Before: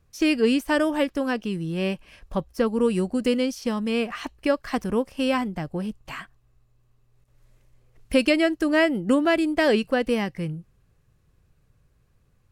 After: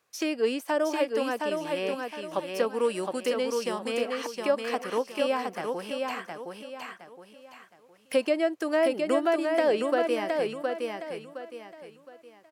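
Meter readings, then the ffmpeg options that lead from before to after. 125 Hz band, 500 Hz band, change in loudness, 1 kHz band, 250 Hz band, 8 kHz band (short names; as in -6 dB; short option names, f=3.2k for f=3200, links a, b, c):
under -15 dB, -1.0 dB, -4.5 dB, -0.5 dB, -9.0 dB, -0.5 dB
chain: -filter_complex "[0:a]highpass=580,acrossover=split=850[a][b];[b]acompressor=threshold=-38dB:ratio=6[c];[a][c]amix=inputs=2:normalize=0,aecho=1:1:715|1430|2145|2860:0.631|0.208|0.0687|0.0227,volume=2.5dB"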